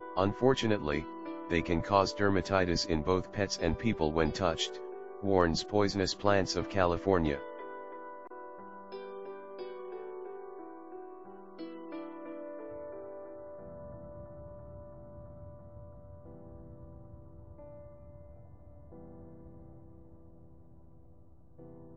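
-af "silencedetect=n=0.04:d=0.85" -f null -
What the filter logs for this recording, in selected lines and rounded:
silence_start: 7.36
silence_end: 21.97 | silence_duration: 14.61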